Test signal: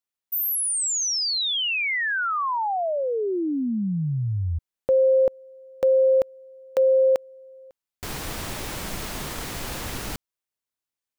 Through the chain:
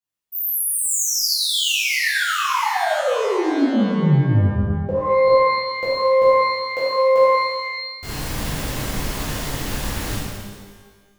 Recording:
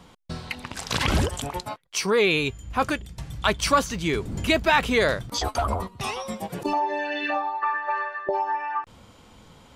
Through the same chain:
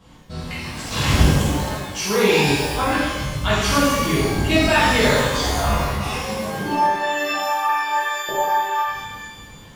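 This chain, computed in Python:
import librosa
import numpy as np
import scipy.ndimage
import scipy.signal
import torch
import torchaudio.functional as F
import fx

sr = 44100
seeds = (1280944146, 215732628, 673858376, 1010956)

y = fx.low_shelf(x, sr, hz=320.0, db=5.0)
y = fx.rev_shimmer(y, sr, seeds[0], rt60_s=1.3, semitones=12, shimmer_db=-8, drr_db=-11.0)
y = F.gain(torch.from_numpy(y), -8.0).numpy()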